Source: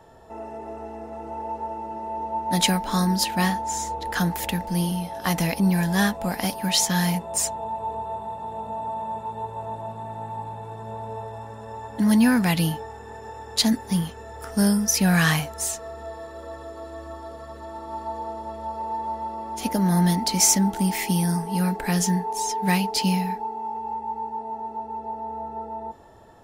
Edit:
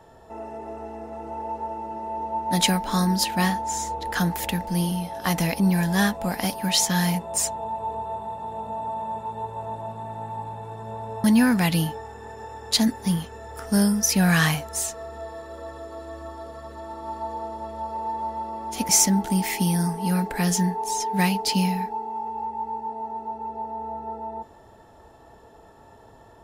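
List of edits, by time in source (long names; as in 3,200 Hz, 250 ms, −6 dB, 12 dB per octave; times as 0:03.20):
0:11.24–0:12.09: remove
0:19.74–0:20.38: remove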